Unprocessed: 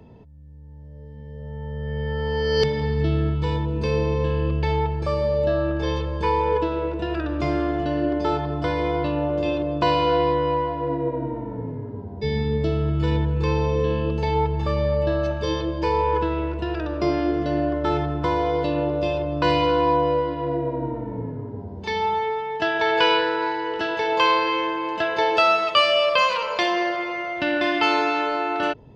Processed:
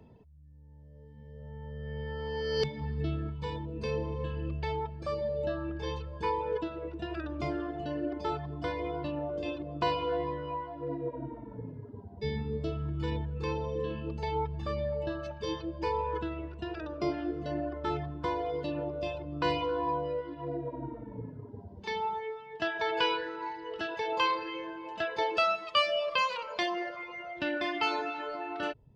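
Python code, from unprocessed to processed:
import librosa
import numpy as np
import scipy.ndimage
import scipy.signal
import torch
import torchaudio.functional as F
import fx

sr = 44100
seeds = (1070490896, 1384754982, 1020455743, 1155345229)

y = fx.dereverb_blind(x, sr, rt60_s=1.2)
y = F.gain(torch.from_numpy(y), -8.0).numpy()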